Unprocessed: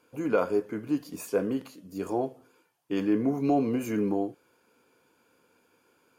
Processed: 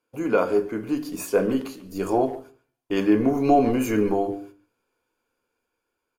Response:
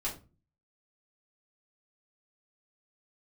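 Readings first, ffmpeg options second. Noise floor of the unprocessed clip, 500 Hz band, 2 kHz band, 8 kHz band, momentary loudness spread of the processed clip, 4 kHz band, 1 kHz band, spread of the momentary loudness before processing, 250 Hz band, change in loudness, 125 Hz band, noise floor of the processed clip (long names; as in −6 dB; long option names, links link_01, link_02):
−68 dBFS, +6.5 dB, +7.0 dB, +7.5 dB, 11 LU, +7.5 dB, +9.0 dB, 9 LU, +5.0 dB, +6.0 dB, +4.5 dB, −81 dBFS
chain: -filter_complex "[0:a]bandreject=frequency=50:width_type=h:width=6,bandreject=frequency=100:width_type=h:width=6,bandreject=frequency=150:width_type=h:width=6,bandreject=frequency=200:width_type=h:width=6,bandreject=frequency=250:width_type=h:width=6,bandreject=frequency=300:width_type=h:width=6,bandreject=frequency=350:width_type=h:width=6,bandreject=frequency=400:width_type=h:width=6,agate=range=-18dB:threshold=-54dB:ratio=16:detection=peak,asplit=2[link_01][link_02];[link_02]adelay=140,highpass=300,lowpass=3400,asoftclip=type=hard:threshold=-22dB,volume=-15dB[link_03];[link_01][link_03]amix=inputs=2:normalize=0,dynaudnorm=framelen=210:gausssize=11:maxgain=3.5dB,asplit=2[link_04][link_05];[1:a]atrim=start_sample=2205[link_06];[link_05][link_06]afir=irnorm=-1:irlink=0,volume=-10.5dB[link_07];[link_04][link_07]amix=inputs=2:normalize=0,asubboost=boost=9:cutoff=52,volume=3dB"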